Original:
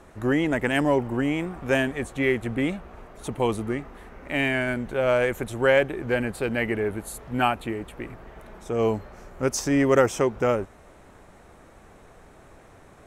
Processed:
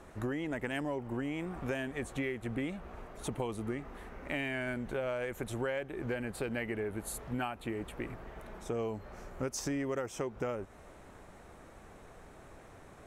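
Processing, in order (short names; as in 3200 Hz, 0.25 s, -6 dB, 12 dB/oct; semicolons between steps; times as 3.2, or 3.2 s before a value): compressor 12:1, threshold -29 dBFS, peak gain reduction 16 dB; gain -3 dB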